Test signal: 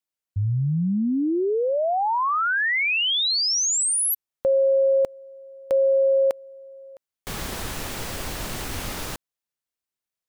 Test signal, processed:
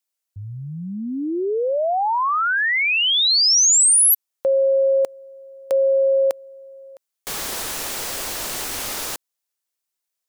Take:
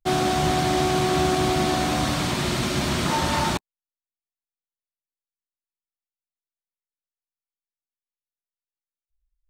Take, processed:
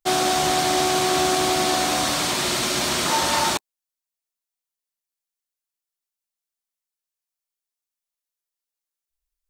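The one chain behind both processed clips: tone controls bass -13 dB, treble +6 dB; gain +2.5 dB

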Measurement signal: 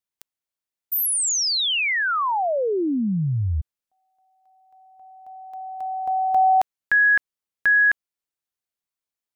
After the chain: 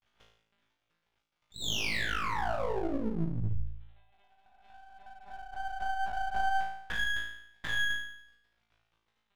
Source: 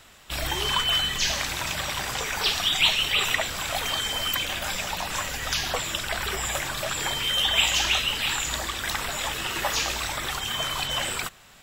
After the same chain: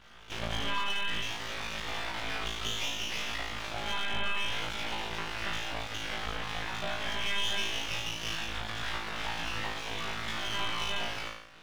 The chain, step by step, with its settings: compressor 8:1, threshold -30 dBFS; crackle 28/s -44 dBFS; monotone LPC vocoder at 8 kHz 200 Hz; flutter echo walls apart 3.1 m, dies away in 0.73 s; half-wave rectifier; gain -2.5 dB

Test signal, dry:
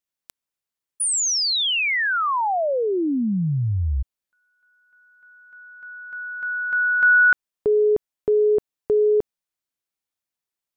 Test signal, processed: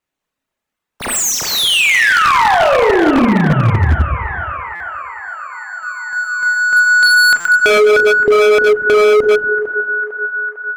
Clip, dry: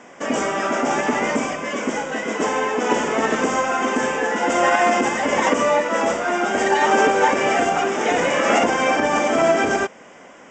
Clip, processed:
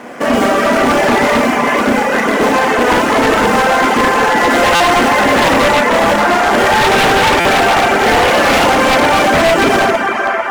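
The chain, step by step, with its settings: median filter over 9 samples; on a send: narrowing echo 0.451 s, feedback 79%, band-pass 1400 Hz, level -7 dB; on the sum: Schroeder reverb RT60 1.4 s, combs from 26 ms, DRR -1 dB; reverb removal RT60 0.56 s; in parallel at -1.5 dB: compressor 10:1, threshold -25 dBFS; on the sum: wavefolder -12 dBFS; stuck buffer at 4.75/7.4, samples 256, times 8; gain +7 dB

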